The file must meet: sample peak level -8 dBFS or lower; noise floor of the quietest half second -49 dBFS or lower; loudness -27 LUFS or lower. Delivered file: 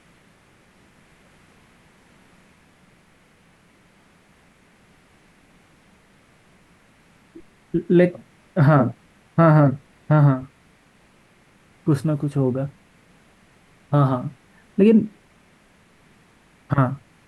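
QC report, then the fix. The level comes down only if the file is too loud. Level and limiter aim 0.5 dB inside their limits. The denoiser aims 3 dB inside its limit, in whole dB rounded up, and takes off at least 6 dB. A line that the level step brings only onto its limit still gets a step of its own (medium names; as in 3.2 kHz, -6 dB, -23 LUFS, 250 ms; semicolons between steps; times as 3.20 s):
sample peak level -5.5 dBFS: fail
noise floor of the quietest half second -56 dBFS: pass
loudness -20.0 LUFS: fail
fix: trim -7.5 dB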